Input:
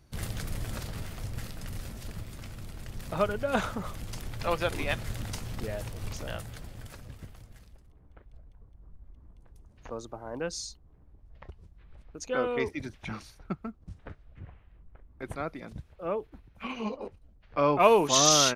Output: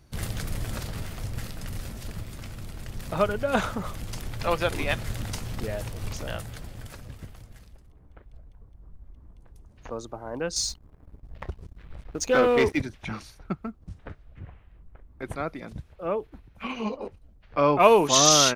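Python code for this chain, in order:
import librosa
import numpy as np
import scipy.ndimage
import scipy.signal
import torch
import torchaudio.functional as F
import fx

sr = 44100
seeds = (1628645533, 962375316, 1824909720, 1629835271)

y = fx.leveller(x, sr, passes=2, at=(10.56, 12.82))
y = y * librosa.db_to_amplitude(3.5)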